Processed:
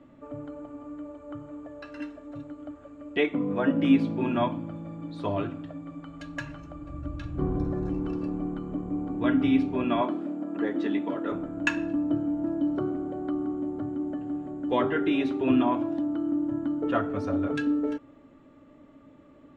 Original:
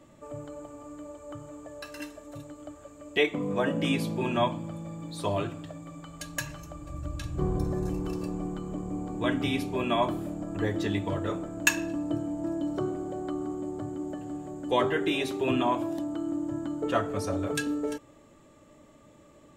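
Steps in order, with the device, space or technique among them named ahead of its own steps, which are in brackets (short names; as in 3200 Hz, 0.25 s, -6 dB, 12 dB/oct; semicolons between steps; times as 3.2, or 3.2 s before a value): 10.01–11.32 HPF 210 Hz 24 dB/oct; inside a cardboard box (LPF 2800 Hz 12 dB/oct; small resonant body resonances 270/1400 Hz, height 12 dB, ringing for 95 ms); gain -1 dB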